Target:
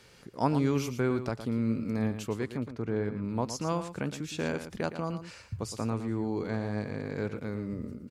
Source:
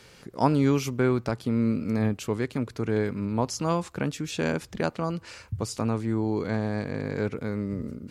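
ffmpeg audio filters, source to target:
-filter_complex "[0:a]asettb=1/sr,asplit=3[s0][s1][s2];[s0]atrim=end=2.564[s3];[s1]atrim=start=2.56:end=3.25,asetpts=PTS-STARTPTS,afade=t=in:d=0.004:c=qsin,afade=t=out:st=0.686:d=0.004:c=qsin,lowpass=f=1900:p=1[s4];[s2]atrim=start=3.246[s5];[s3][s4]acrossfade=d=0.004:c1=hsin:c2=qsin[s6];[s6][s5]acrossfade=d=0.004:c1=qsin:c2=hsin,aecho=1:1:114:0.299,volume=0.562"

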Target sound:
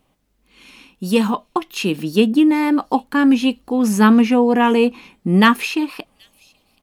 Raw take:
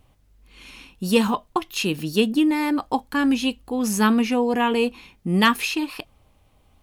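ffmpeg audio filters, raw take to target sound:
-filter_complex "[0:a]lowshelf=f=140:t=q:w=1.5:g=-9.5,acrossover=split=2600[s0][s1];[s0]dynaudnorm=f=310:g=9:m=3.76[s2];[s1]aecho=1:1:779|1558|2337:0.0891|0.0312|0.0109[s3];[s2][s3]amix=inputs=2:normalize=0,volume=0.891"

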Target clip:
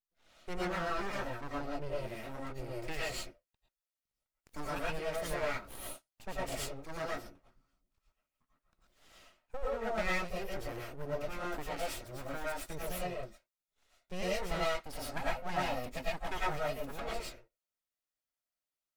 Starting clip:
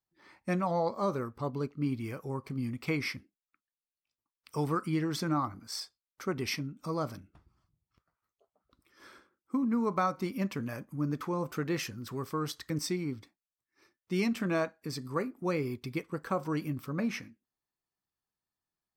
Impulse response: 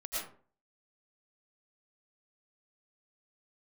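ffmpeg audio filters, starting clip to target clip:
-filter_complex "[0:a]asettb=1/sr,asplit=3[s0][s1][s2];[s0]atrim=end=14.514[s3];[s1]atrim=start=14.51:end=17.01,asetpts=PTS-STARTPTS,afade=t=in:d=0.004:c=qsin,afade=t=out:st=2.496:d=0.004:c=qsin,aecho=1:1:2.4:0.93,atrim=end_sample=110250[s4];[s2]atrim=start=17.006[s5];[s3][s4]acrossfade=d=0.004:c1=hsin:c2=qsin[s6];[s6][s5]acrossfade=d=0.004:c1=qsin:c2=hsin,aeval=exprs='abs(val(0))':c=same[s7];[1:a]atrim=start_sample=2205,atrim=end_sample=6174[s8];[s7][s8]afir=irnorm=-1:irlink=0,volume=0.841"

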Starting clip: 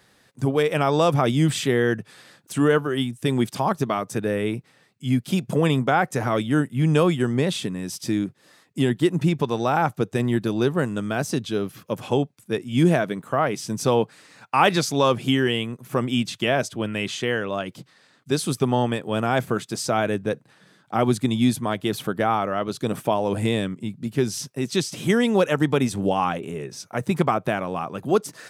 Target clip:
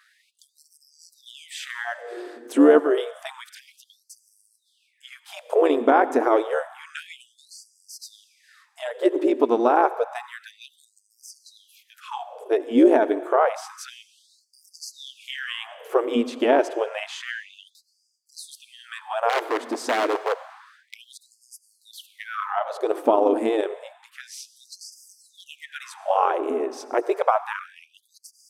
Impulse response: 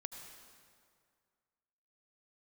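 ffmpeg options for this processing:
-filter_complex "[0:a]tiltshelf=f=1500:g=9,asplit=2[s0][s1];[s1]acompressor=threshold=0.0501:ratio=6,volume=1.26[s2];[s0][s2]amix=inputs=2:normalize=0,tremolo=f=230:d=0.667,asettb=1/sr,asplit=3[s3][s4][s5];[s3]atrim=end=19.294[s6];[s4]atrim=start=19.29:end=20.94,asetpts=PTS-STARTPTS,afade=t=in:d=0.004:c=qsin,afade=t=out:st=1.646:d=0.004:c=qsin,aeval=exprs='0.2*(abs(mod(val(0)/0.2+3,4)-2)-1)':c=same[s7];[s5]atrim=start=20.936[s8];[s6][s7]acrossfade=d=0.004:c1=hsin:c2=qsin[s9];[s9][s8]acrossfade=d=0.004:c1=qsin:c2=hsin,asplit=2[s10][s11];[1:a]atrim=start_sample=2205[s12];[s11][s12]afir=irnorm=-1:irlink=0,volume=0.708[s13];[s10][s13]amix=inputs=2:normalize=0,afftfilt=real='re*gte(b*sr/1024,230*pow(4700/230,0.5+0.5*sin(2*PI*0.29*pts/sr)))':imag='im*gte(b*sr/1024,230*pow(4700/230,0.5+0.5*sin(2*PI*0.29*pts/sr)))':win_size=1024:overlap=0.75,volume=0.668"

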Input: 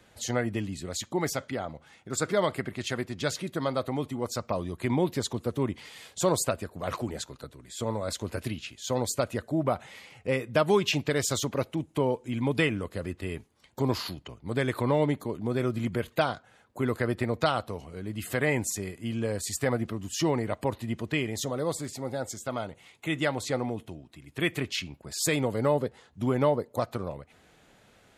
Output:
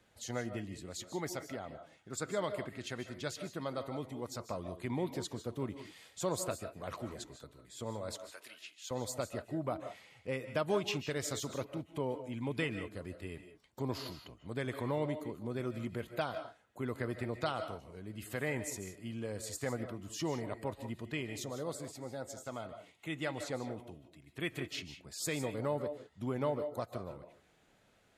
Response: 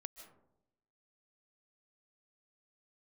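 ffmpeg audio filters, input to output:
-filter_complex "[0:a]asettb=1/sr,asplit=3[s0][s1][s2];[s0]atrim=end=8.144[s3];[s1]atrim=start=8.14:end=8.91,asetpts=PTS-STARTPTS,afade=t=in:d=0.004:c=qsin,afade=t=out:st=0.766:d=0.004:c=qsin,highpass=890[s4];[s2]atrim=start=8.906[s5];[s3][s4]acrossfade=d=0.004:c1=hsin:c2=qsin[s6];[s6][s5]acrossfade=d=0.004:c1=qsin:c2=hsin[s7];[1:a]atrim=start_sample=2205,afade=t=out:st=0.25:d=0.01,atrim=end_sample=11466[s8];[s7][s8]afir=irnorm=-1:irlink=0,volume=0.596"

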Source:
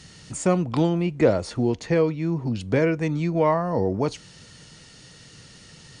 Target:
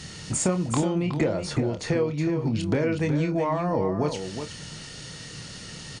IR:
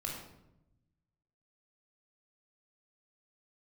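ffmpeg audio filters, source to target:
-filter_complex "[0:a]acompressor=threshold=0.0398:ratio=10,asplit=2[s0][s1];[s1]adelay=27,volume=0.376[s2];[s0][s2]amix=inputs=2:normalize=0,aecho=1:1:368:0.376,volume=2.11"

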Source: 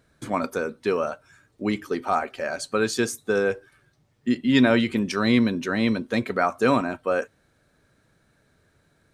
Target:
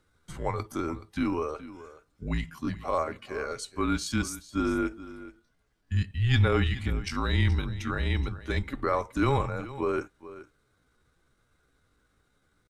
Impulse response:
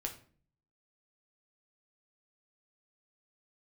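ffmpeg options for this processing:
-af "afreqshift=-150,atempo=0.72,aecho=1:1:425:0.158,volume=0.562"

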